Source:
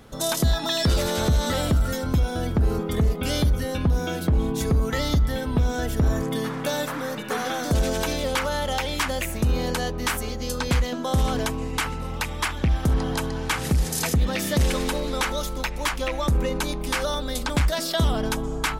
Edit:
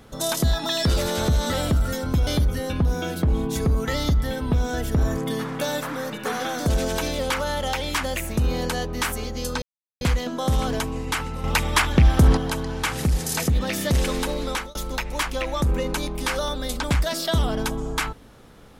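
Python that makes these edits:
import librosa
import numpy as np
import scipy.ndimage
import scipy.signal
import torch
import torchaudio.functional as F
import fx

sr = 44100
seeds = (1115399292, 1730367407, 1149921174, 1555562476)

y = fx.edit(x, sr, fx.cut(start_s=2.27, length_s=1.05),
    fx.insert_silence(at_s=10.67, length_s=0.39),
    fx.clip_gain(start_s=12.1, length_s=0.93, db=6.5),
    fx.fade_out_span(start_s=15.06, length_s=0.35, curve='qsin'), tone=tone)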